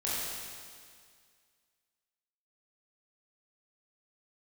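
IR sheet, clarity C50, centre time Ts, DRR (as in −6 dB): −3.5 dB, 142 ms, −8.5 dB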